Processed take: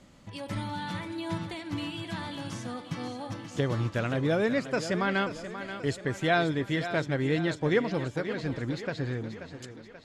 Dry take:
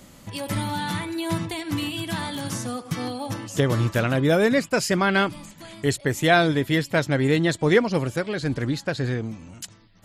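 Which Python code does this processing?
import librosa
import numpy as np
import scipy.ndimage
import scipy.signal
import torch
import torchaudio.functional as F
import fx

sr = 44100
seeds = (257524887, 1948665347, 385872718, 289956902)

p1 = fx.air_absorb(x, sr, metres=72.0)
p2 = p1 + fx.echo_thinned(p1, sr, ms=533, feedback_pct=54, hz=170.0, wet_db=-10.5, dry=0)
y = p2 * 10.0 ** (-7.0 / 20.0)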